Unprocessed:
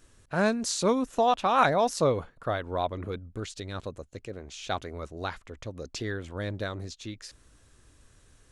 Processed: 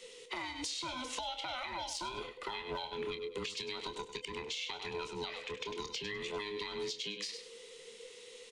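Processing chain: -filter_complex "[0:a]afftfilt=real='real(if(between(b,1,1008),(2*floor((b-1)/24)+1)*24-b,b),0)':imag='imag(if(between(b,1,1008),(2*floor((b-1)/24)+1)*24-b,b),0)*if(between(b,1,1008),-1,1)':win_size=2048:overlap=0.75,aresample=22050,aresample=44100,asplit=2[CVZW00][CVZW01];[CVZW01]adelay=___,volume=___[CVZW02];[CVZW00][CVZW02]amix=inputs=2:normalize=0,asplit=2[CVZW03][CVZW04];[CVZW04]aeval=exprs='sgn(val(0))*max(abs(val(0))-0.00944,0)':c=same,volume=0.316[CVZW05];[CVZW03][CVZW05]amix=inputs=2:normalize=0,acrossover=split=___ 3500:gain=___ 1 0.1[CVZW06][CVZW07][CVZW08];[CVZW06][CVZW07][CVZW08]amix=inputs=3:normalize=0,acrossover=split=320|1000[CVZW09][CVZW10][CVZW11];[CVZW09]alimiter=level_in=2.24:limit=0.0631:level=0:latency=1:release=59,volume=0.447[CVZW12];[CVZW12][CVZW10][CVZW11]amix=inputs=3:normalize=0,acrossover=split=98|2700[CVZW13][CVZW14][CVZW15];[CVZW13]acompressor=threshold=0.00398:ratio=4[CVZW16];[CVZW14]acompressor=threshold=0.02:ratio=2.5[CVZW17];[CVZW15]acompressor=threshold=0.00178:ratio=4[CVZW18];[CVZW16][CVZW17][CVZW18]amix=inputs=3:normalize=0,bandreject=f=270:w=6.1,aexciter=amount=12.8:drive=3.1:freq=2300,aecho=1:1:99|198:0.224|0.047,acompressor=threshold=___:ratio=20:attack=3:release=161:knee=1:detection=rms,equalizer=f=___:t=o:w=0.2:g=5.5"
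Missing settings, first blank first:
26, 0.335, 210, 0.251, 0.02, 470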